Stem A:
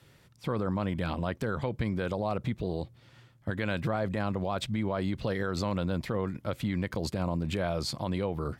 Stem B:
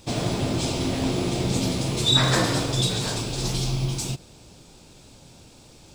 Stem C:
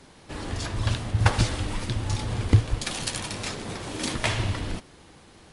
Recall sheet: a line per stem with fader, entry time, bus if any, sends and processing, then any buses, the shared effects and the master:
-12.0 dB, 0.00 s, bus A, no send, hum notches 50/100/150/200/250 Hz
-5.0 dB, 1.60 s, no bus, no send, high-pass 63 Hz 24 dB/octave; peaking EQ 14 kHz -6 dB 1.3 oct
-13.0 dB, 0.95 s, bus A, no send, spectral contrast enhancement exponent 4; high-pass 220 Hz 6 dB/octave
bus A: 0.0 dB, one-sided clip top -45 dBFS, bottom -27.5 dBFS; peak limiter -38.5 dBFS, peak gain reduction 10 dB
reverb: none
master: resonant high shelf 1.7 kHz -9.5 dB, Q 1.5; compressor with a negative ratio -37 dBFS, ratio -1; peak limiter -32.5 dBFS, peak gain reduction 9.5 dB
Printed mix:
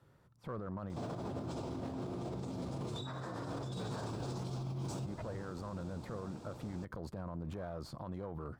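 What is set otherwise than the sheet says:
stem A: missing hum notches 50/100/150/200/250 Hz; stem B: entry 1.60 s -> 0.90 s

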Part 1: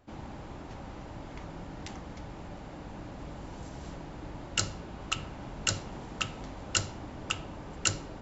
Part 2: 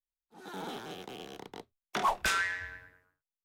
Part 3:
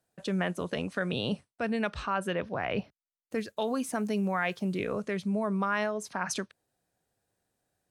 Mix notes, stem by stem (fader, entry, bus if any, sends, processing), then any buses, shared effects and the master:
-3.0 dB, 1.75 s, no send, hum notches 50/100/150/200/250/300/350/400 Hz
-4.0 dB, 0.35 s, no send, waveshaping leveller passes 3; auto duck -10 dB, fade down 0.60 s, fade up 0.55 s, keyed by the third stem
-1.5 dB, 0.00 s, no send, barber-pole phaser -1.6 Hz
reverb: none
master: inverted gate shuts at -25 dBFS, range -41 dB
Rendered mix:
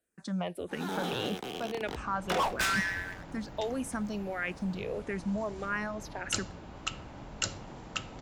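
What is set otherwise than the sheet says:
stem 2 -4.0 dB -> +4.5 dB; master: missing inverted gate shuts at -25 dBFS, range -41 dB

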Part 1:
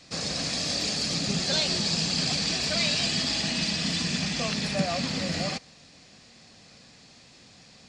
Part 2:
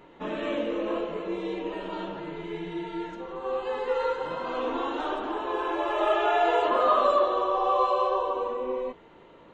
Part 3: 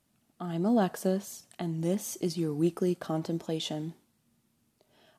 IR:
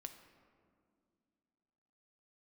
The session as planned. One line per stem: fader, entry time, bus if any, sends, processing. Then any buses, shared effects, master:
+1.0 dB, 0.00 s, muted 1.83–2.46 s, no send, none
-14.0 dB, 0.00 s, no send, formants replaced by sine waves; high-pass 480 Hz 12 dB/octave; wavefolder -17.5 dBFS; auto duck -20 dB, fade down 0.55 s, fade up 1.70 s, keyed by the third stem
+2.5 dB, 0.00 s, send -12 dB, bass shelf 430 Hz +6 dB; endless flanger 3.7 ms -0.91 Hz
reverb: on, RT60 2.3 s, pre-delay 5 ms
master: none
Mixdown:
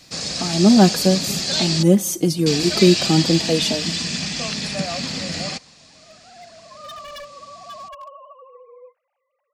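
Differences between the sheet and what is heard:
stem 3 +2.5 dB -> +11.0 dB; master: extra treble shelf 3.7 kHz +6 dB

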